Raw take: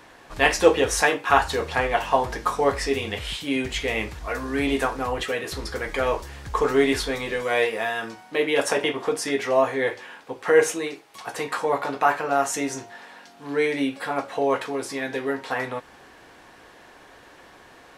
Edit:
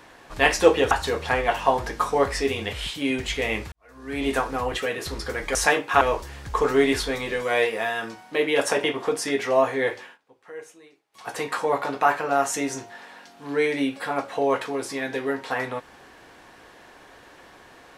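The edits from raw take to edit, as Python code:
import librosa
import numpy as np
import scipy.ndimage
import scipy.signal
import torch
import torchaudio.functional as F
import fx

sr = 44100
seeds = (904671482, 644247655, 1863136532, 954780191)

y = fx.edit(x, sr, fx.move(start_s=0.91, length_s=0.46, to_s=6.01),
    fx.fade_in_span(start_s=4.18, length_s=0.6, curve='qua'),
    fx.fade_down_up(start_s=10.01, length_s=1.28, db=-22.0, fade_s=0.17), tone=tone)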